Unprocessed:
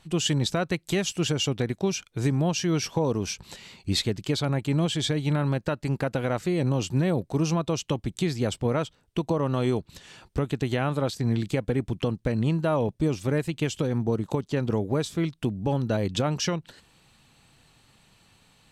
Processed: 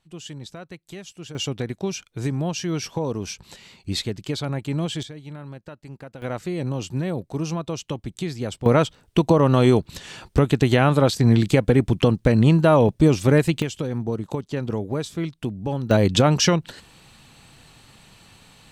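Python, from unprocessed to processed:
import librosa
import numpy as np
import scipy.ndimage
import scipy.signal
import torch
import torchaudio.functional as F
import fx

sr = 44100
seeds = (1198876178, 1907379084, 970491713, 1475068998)

y = fx.gain(x, sr, db=fx.steps((0.0, -12.5), (1.35, -1.0), (5.03, -12.5), (6.22, -2.0), (8.66, 9.0), (13.62, -0.5), (15.91, 9.0)))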